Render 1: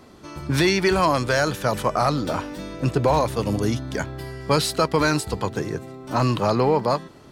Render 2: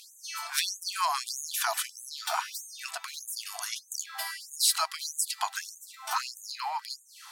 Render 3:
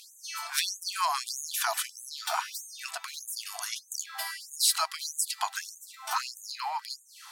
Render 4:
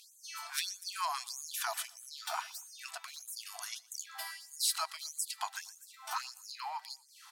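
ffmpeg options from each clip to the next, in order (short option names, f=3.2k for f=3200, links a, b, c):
-af "acompressor=threshold=-28dB:ratio=6,aemphasis=mode=production:type=cd,afftfilt=real='re*gte(b*sr/1024,640*pow(6300/640,0.5+0.5*sin(2*PI*1.6*pts/sr)))':imag='im*gte(b*sr/1024,640*pow(6300/640,0.5+0.5*sin(2*PI*1.6*pts/sr)))':win_size=1024:overlap=0.75,volume=6dB"
-af anull
-af "aecho=1:1:119|238:0.0668|0.0254,volume=-7dB"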